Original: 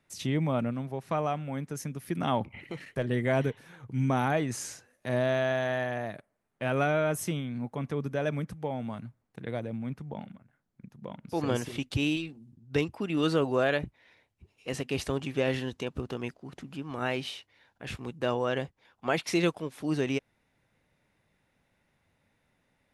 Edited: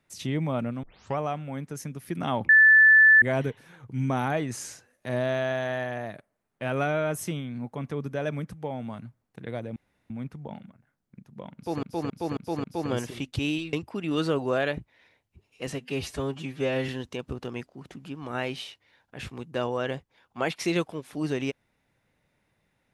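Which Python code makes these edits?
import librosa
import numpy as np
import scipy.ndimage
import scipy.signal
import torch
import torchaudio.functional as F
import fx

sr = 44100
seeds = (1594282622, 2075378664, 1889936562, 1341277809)

y = fx.edit(x, sr, fx.tape_start(start_s=0.83, length_s=0.35),
    fx.bleep(start_s=2.49, length_s=0.73, hz=1750.0, db=-12.0),
    fx.insert_room_tone(at_s=9.76, length_s=0.34),
    fx.repeat(start_s=11.22, length_s=0.27, count=5),
    fx.cut(start_s=12.31, length_s=0.48),
    fx.stretch_span(start_s=14.79, length_s=0.77, factor=1.5), tone=tone)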